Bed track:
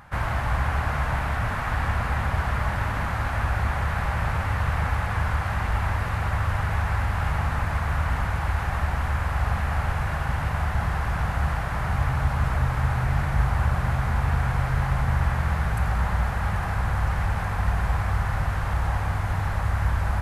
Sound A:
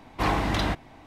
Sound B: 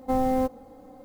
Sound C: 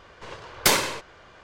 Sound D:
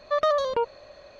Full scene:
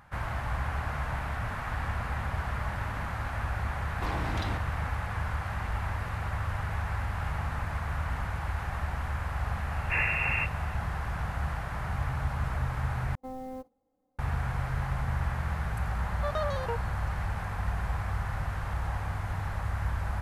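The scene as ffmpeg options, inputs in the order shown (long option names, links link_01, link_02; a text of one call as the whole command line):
ffmpeg -i bed.wav -i cue0.wav -i cue1.wav -i cue2.wav -i cue3.wav -filter_complex "[1:a]asplit=2[link_01][link_02];[0:a]volume=-7.5dB[link_03];[link_01]acompressor=threshold=-27dB:ratio=6:attack=3.2:release=140:knee=1:detection=peak[link_04];[link_02]lowpass=frequency=2400:width_type=q:width=0.5098,lowpass=frequency=2400:width_type=q:width=0.6013,lowpass=frequency=2400:width_type=q:width=0.9,lowpass=frequency=2400:width_type=q:width=2.563,afreqshift=-2800[link_05];[2:a]agate=range=-13dB:threshold=-42dB:ratio=16:release=100:detection=peak[link_06];[link_03]asplit=2[link_07][link_08];[link_07]atrim=end=13.154[link_09];[link_06]atrim=end=1.04,asetpts=PTS-STARTPTS,volume=-16dB[link_10];[link_08]atrim=start=14.186[link_11];[link_04]atrim=end=1.06,asetpts=PTS-STARTPTS,volume=-4dB,afade=type=in:duration=0.004:curve=hsin,afade=type=out:start_time=1.056:duration=0.004:curve=hsin,adelay=3830[link_12];[link_05]atrim=end=1.06,asetpts=PTS-STARTPTS,volume=-4.5dB,afade=type=in:duration=0.004:curve=hsin,afade=type=out:start_time=1.056:duration=0.004:curve=hsin,adelay=9710[link_13];[4:a]atrim=end=1.19,asetpts=PTS-STARTPTS,volume=-9.5dB,afade=type=in:duration=0.004:curve=hsin,afade=type=out:start_time=1.186:duration=0.004:curve=hsin,adelay=16120[link_14];[link_09][link_10]acrossfade=duration=0.004:curve1=hsin:curve2=hsin[link_15];[link_15][link_11]acrossfade=duration=0.004:curve1=hsin:curve2=hsin[link_16];[link_16][link_12][link_13][link_14]amix=inputs=4:normalize=0" out.wav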